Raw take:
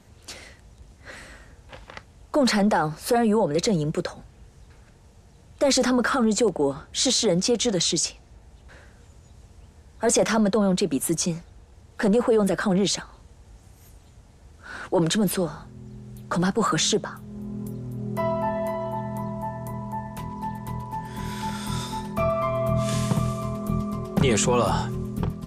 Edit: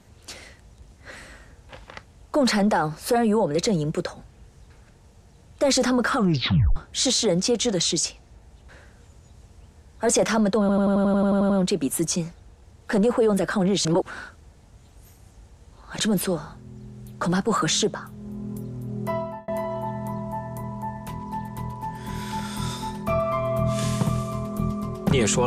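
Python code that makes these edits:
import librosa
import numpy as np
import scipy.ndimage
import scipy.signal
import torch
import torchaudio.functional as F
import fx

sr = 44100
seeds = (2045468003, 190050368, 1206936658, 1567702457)

y = fx.edit(x, sr, fx.tape_stop(start_s=6.16, length_s=0.6),
    fx.stutter(start_s=10.6, slice_s=0.09, count=11),
    fx.reverse_span(start_s=12.95, length_s=2.14),
    fx.fade_out_span(start_s=18.17, length_s=0.41), tone=tone)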